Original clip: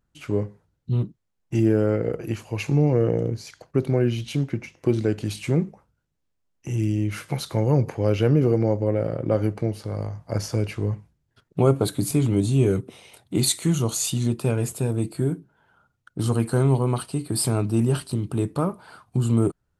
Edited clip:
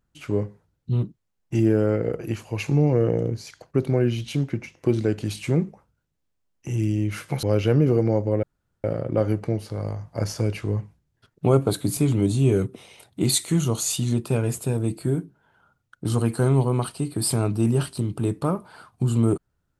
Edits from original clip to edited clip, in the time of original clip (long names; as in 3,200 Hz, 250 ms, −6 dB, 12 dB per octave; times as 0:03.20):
0:07.43–0:07.98: remove
0:08.98: splice in room tone 0.41 s